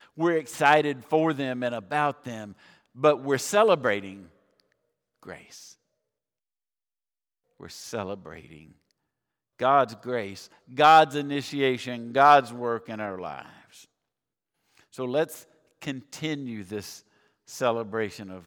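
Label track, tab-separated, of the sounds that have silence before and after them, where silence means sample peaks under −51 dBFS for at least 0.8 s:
7.600000	13.850000	sound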